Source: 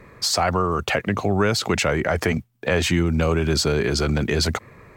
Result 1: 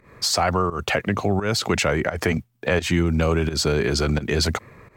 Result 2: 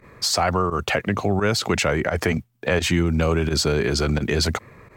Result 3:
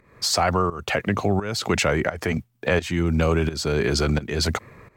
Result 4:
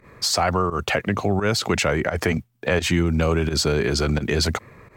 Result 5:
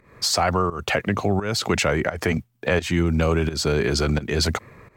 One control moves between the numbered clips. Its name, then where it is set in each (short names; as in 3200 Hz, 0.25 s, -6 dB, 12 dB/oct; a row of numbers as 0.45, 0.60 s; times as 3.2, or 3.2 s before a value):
pump, release: 179, 63, 441, 99, 279 ms